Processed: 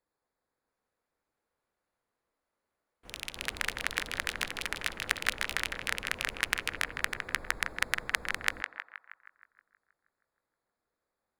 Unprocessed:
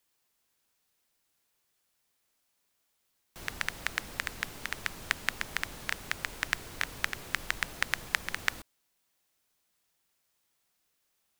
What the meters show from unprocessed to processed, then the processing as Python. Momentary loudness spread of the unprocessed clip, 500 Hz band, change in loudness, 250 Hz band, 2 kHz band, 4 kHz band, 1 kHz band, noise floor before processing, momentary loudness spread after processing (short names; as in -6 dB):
5 LU, +3.0 dB, +1.5 dB, 0.0 dB, +1.5 dB, +2.5 dB, +1.5 dB, -77 dBFS, 9 LU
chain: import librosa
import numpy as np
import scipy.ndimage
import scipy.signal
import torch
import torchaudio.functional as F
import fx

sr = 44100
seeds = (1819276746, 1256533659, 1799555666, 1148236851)

y = fx.wiener(x, sr, points=15)
y = fx.echo_pitch(y, sr, ms=677, semitones=6, count=2, db_per_echo=-6.0)
y = fx.graphic_eq_31(y, sr, hz=(100, 160, 500, 10000), db=(-4, -5, 5, 6))
y = fx.echo_banded(y, sr, ms=158, feedback_pct=62, hz=1400.0, wet_db=-6.0)